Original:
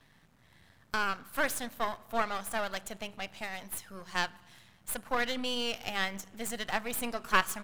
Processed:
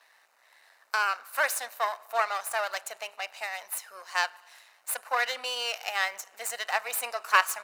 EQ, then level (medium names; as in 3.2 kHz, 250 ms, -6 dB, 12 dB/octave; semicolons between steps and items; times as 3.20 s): high-pass 590 Hz 24 dB/octave; band-stop 3.3 kHz, Q 6.2; +5.0 dB